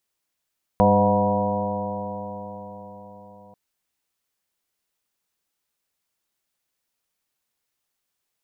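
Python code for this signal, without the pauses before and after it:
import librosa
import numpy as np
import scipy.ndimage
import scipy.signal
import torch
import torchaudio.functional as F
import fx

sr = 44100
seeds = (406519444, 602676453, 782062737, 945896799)

y = fx.additive_stiff(sr, length_s=2.74, hz=99.1, level_db=-23.0, upper_db=(5.0, -8, -10.5, 5, 1, 2.5, -8.0, 3.0), decay_s=4.89, stiffness=0.0021)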